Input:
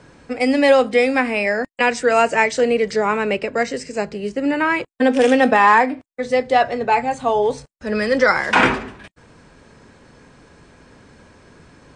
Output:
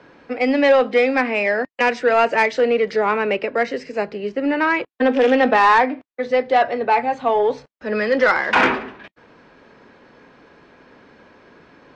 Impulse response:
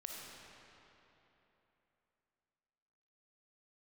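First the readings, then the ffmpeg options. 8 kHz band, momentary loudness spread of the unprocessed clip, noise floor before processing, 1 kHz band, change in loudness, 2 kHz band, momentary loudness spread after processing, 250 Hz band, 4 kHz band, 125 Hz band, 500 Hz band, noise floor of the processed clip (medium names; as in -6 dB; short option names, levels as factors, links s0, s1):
under -10 dB, 11 LU, -66 dBFS, -0.5 dB, -0.5 dB, -0.5 dB, 10 LU, -2.0 dB, -2.0 dB, no reading, 0.0 dB, -66 dBFS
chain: -filter_complex "[0:a]lowpass=f=6200:w=0.5412,lowpass=f=6200:w=1.3066,acrossover=split=210 4000:gain=0.2 1 0.224[s0][s1][s2];[s0][s1][s2]amix=inputs=3:normalize=0,acontrast=58,volume=0.562"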